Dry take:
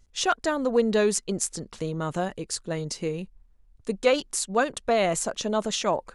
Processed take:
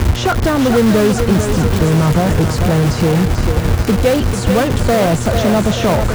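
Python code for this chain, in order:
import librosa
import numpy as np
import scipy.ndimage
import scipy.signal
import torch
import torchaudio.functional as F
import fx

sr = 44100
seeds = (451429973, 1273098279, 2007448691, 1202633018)

p1 = x + 0.5 * 10.0 ** (-25.0 / 20.0) * np.sign(x)
p2 = fx.riaa(p1, sr, side='playback')
p3 = fx.dmg_buzz(p2, sr, base_hz=120.0, harmonics=19, level_db=-33.0, tilt_db=-6, odd_only=False)
p4 = fx.peak_eq(p3, sr, hz=89.0, db=12.0, octaves=0.56)
p5 = (np.mod(10.0 ** (14.0 / 20.0) * p4 + 1.0, 2.0) - 1.0) / 10.0 ** (14.0 / 20.0)
p6 = p4 + F.gain(torch.from_numpy(p5), -9.0).numpy()
p7 = scipy.signal.sosfilt(scipy.signal.butter(2, 44.0, 'highpass', fs=sr, output='sos'), p6)
p8 = fx.echo_thinned(p7, sr, ms=441, feedback_pct=63, hz=220.0, wet_db=-7)
p9 = fx.band_squash(p8, sr, depth_pct=40)
y = F.gain(torch.from_numpy(p9), 3.5).numpy()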